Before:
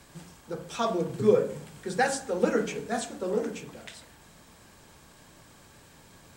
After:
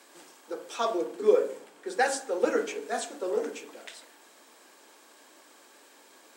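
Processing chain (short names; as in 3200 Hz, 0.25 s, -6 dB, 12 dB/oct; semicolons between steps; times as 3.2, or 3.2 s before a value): steep high-pass 280 Hz 36 dB/oct; 0.74–2.82 mismatched tape noise reduction decoder only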